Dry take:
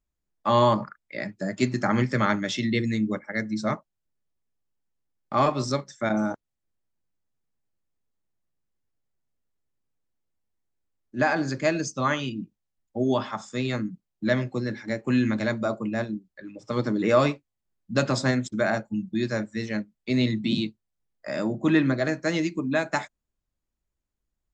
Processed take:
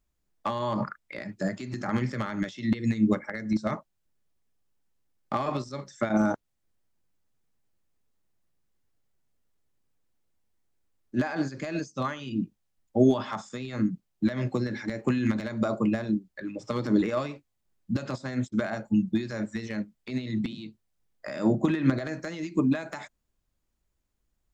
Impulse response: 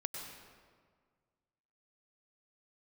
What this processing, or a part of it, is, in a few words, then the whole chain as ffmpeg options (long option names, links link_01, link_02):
de-esser from a sidechain: -filter_complex "[0:a]asplit=2[link_01][link_02];[link_02]highpass=4500,apad=whole_len=1082049[link_03];[link_01][link_03]sidechaincompress=threshold=-50dB:ratio=20:attack=0.57:release=84,volume=5.5dB"